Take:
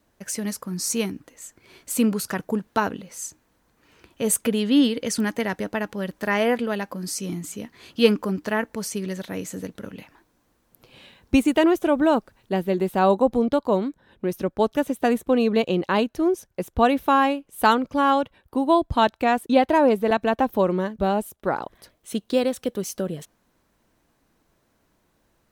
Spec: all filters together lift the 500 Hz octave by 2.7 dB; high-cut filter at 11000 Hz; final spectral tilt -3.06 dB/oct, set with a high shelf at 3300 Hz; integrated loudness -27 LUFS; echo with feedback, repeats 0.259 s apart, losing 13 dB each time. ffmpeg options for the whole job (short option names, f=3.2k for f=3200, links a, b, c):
-af "lowpass=11k,equalizer=f=500:t=o:g=3.5,highshelf=f=3.3k:g=-6.5,aecho=1:1:259|518|777:0.224|0.0493|0.0108,volume=-5.5dB"